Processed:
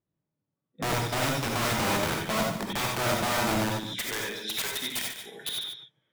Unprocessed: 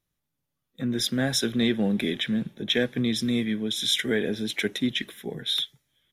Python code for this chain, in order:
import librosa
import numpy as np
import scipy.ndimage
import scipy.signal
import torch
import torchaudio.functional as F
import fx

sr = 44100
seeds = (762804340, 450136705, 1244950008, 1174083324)

y = fx.bandpass_q(x, sr, hz=fx.steps((0.0, 300.0), (3.98, 3300.0), (5.49, 550.0)), q=0.61)
y = (np.mod(10.0 ** (25.0 / 20.0) * y + 1.0, 2.0) - 1.0) / 10.0 ** (25.0 / 20.0)
y = y + 10.0 ** (-10.5 / 20.0) * np.pad(y, (int(147 * sr / 1000.0), 0))[:len(y)]
y = fx.rev_gated(y, sr, seeds[0], gate_ms=110, shape='rising', drr_db=0.0)